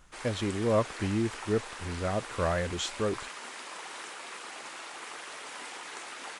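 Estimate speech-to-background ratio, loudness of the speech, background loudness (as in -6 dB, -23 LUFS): 9.5 dB, -31.5 LUFS, -41.0 LUFS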